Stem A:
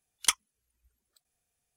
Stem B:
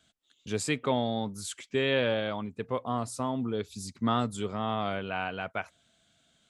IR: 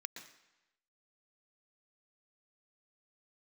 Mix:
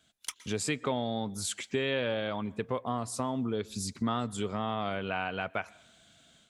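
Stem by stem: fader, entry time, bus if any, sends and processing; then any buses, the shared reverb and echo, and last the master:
-6.0 dB, 0.00 s, send -12 dB, auto duck -19 dB, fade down 0.60 s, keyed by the second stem
-1.5 dB, 0.00 s, send -17 dB, level rider gain up to 8 dB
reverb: on, RT60 1.0 s, pre-delay 113 ms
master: compression 2.5:1, threshold -32 dBFS, peak gain reduction 11.5 dB

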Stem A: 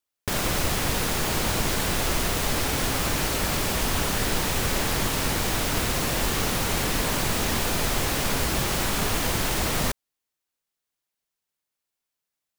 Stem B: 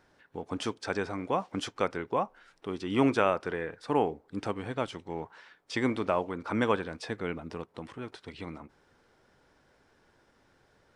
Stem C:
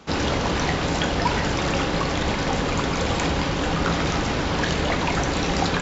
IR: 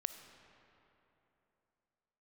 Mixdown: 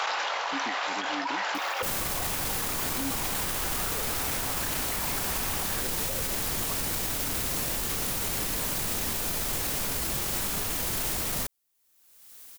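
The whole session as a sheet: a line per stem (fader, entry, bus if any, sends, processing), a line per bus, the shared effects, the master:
0.0 dB, 1.55 s, no send, upward compressor, threshold -33 dBFS; treble shelf 6.9 kHz +11.5 dB
-5.5 dB, 0.00 s, no send, level rider; stepped vowel filter 1.9 Hz
+0.5 dB, 0.00 s, no send, high-pass 730 Hz 24 dB/octave; treble shelf 5.1 kHz -10.5 dB; level flattener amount 100%; auto duck -10 dB, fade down 0.25 s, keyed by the second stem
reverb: none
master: peak limiter -20.5 dBFS, peak gain reduction 15.5 dB

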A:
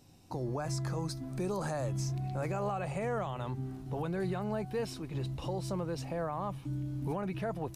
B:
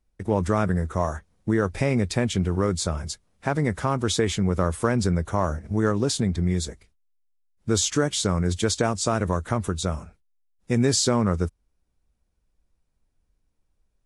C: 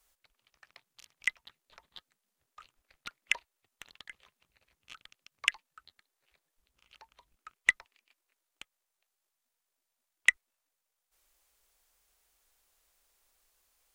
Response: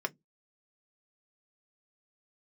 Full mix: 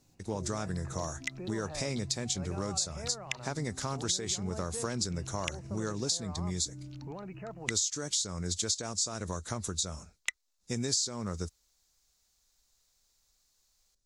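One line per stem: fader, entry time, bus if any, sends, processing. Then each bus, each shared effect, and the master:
-7.0 dB, 0.00 s, no send, Chebyshev low-pass 2.9 kHz, order 10
-10.5 dB, 0.00 s, no send, treble shelf 4.4 kHz +10.5 dB
-5.5 dB, 0.00 s, no send, none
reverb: none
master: high-order bell 5.3 kHz +11 dB 1.2 oct; compression 5:1, threshold -29 dBFS, peak gain reduction 14 dB

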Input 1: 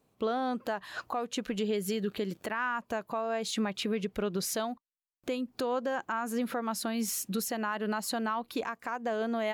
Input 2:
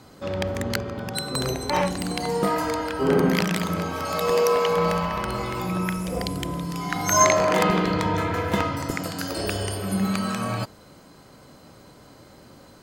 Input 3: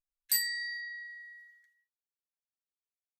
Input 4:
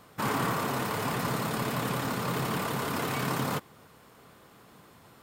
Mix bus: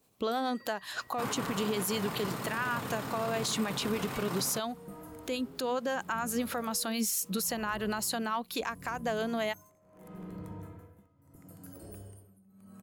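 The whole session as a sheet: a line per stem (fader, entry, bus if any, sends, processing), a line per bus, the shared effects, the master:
+1.5 dB, 0.00 s, no send, treble shelf 3.3 kHz +11.5 dB; harmonic tremolo 9.4 Hz, depth 50%, crossover 510 Hz
-13.5 dB, 2.45 s, no send, saturation -17.5 dBFS, distortion -13 dB; tremolo 0.75 Hz, depth 93%; FFT filter 150 Hz 0 dB, 4.7 kHz -21 dB, 11 kHz +2 dB
-16.5 dB, 0.00 s, no send, compression, threshold -38 dBFS, peak gain reduction 13.5 dB
-7.0 dB, 1.00 s, no send, none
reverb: none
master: peak limiter -22 dBFS, peak gain reduction 9.5 dB

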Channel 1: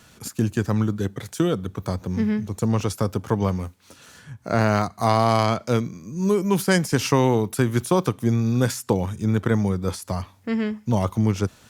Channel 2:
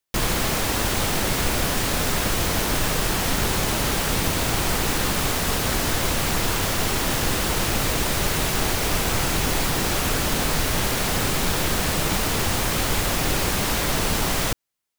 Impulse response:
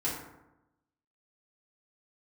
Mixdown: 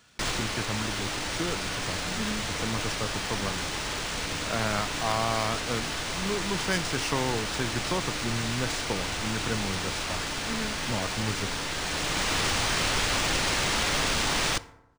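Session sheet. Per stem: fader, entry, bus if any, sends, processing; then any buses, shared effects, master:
-8.0 dB, 0.00 s, no send, none
-4.5 dB, 0.05 s, send -18.5 dB, auto duck -7 dB, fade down 0.50 s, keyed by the first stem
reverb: on, RT60 0.95 s, pre-delay 3 ms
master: tilt shelf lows -4.5 dB; decimation joined by straight lines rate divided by 3×

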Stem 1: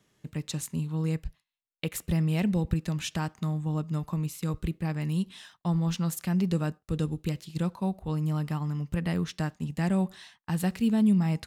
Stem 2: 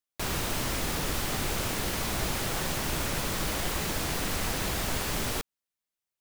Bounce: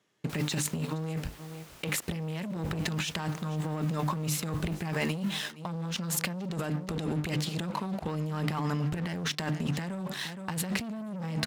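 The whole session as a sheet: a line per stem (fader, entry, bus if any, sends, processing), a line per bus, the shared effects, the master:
-0.5 dB, 0.00 s, no send, echo send -20.5 dB, treble shelf 8.1 kHz -9.5 dB; hum notches 50/100/150/200/250/300 Hz; waveshaping leveller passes 3
-13.5 dB, 0.10 s, no send, no echo send, auto duck -11 dB, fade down 0.90 s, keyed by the first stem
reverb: none
echo: delay 467 ms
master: high-pass 290 Hz 6 dB/octave; compressor with a negative ratio -32 dBFS, ratio -1; endings held to a fixed fall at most 590 dB/s

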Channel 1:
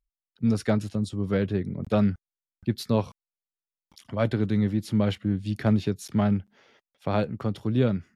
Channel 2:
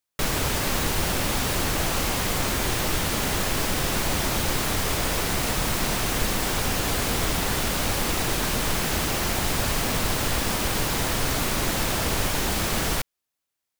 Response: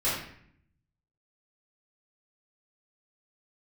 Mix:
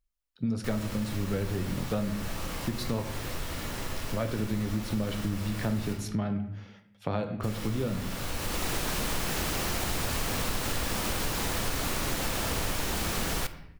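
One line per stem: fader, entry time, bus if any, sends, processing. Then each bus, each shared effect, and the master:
+1.5 dB, 0.00 s, send -16 dB, compression 1.5:1, threshold -30 dBFS, peak gain reduction 5 dB
-1.0 dB, 0.45 s, muted 5.93–7.43 s, send -21 dB, auto duck -19 dB, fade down 0.85 s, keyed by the first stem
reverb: on, RT60 0.60 s, pre-delay 3 ms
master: compression 2.5:1, threshold -29 dBFS, peak gain reduction 8.5 dB

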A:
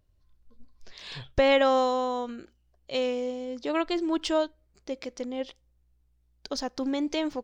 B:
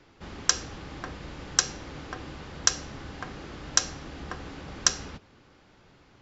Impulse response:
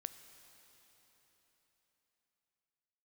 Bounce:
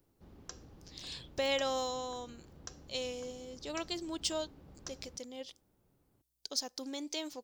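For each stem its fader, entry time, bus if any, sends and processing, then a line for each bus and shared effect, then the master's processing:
-5.5 dB, 0.00 s, no send, tilt EQ +4 dB/octave
-13.0 dB, 0.00 s, no send, treble shelf 2.4 kHz -11.5 dB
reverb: none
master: peaking EQ 1.7 kHz -9.5 dB 2.3 oct

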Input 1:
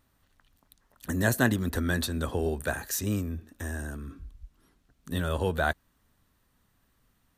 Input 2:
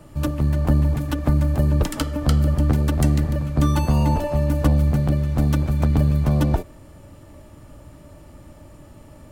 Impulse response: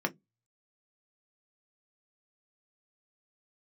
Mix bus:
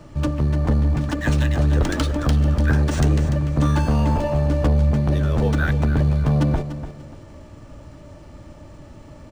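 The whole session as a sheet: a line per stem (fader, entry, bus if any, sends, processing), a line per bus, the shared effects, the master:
-1.5 dB, 0.00 s, no send, echo send -11 dB, LFO high-pass sine 0.9 Hz 290–2800 Hz
+2.5 dB, 0.00 s, no send, echo send -12 dB, saturation -14.5 dBFS, distortion -15 dB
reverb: none
echo: feedback delay 293 ms, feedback 29%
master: decimation joined by straight lines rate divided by 3×

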